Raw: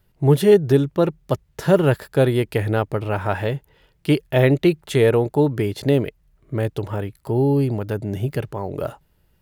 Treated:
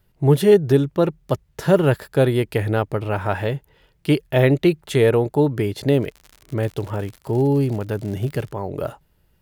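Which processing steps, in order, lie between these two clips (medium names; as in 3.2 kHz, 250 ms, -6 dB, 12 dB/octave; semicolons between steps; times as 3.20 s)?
6.00–8.50 s: crackle 98 per s -30 dBFS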